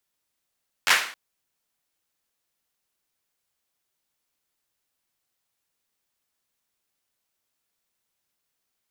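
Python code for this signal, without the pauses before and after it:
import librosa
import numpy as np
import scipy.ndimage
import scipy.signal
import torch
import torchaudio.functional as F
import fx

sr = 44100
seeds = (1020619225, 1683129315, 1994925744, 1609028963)

y = fx.drum_clap(sr, seeds[0], length_s=0.27, bursts=4, spacing_ms=11, hz=1800.0, decay_s=0.47)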